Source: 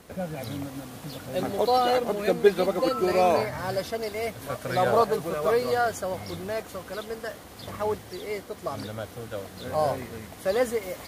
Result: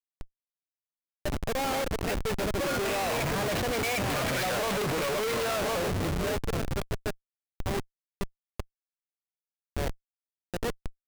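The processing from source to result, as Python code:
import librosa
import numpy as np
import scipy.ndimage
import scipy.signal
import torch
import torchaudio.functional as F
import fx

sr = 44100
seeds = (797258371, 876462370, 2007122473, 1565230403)

p1 = fx.doppler_pass(x, sr, speed_mps=26, closest_m=10.0, pass_at_s=4.51)
p2 = fx.peak_eq(p1, sr, hz=2500.0, db=12.5, octaves=1.2)
p3 = p2 + fx.echo_single(p2, sr, ms=1057, db=-16.5, dry=0)
p4 = fx.schmitt(p3, sr, flips_db=-40.0)
y = p4 * 10.0 ** (4.5 / 20.0)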